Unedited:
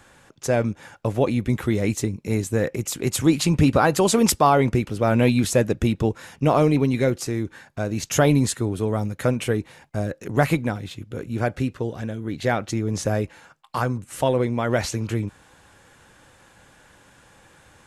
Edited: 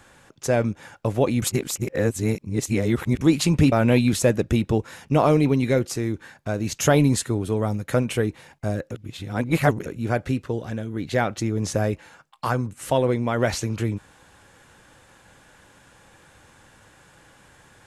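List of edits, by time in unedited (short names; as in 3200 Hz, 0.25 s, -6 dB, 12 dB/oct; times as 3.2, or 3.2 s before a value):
1.42–3.21 reverse
3.72–5.03 cut
10.22–11.17 reverse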